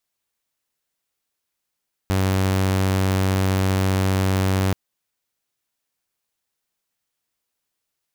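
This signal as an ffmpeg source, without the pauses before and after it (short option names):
-f lavfi -i "aevalsrc='0.178*(2*mod(95.2*t,1)-1)':d=2.63:s=44100"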